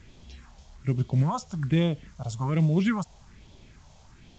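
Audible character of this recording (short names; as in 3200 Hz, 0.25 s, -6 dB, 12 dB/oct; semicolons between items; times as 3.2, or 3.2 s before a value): phasing stages 4, 1.2 Hz, lowest notch 290–1700 Hz; a quantiser's noise floor 10-bit, dither none; µ-law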